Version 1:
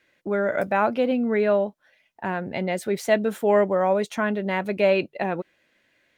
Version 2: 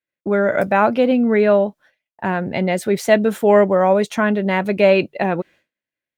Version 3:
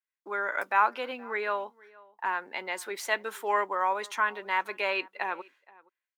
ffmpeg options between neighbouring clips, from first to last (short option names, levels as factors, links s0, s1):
-af "agate=range=0.0224:threshold=0.00447:ratio=3:detection=peak,equalizer=f=130:w=0.79:g=3,volume=2"
-filter_complex "[0:a]highpass=f=360:w=0.5412,highpass=f=360:w=1.3066,lowshelf=f=790:t=q:w=3:g=-7,asplit=2[s0][s1];[s1]adelay=472.3,volume=0.0708,highshelf=f=4000:g=-10.6[s2];[s0][s2]amix=inputs=2:normalize=0,volume=0.398"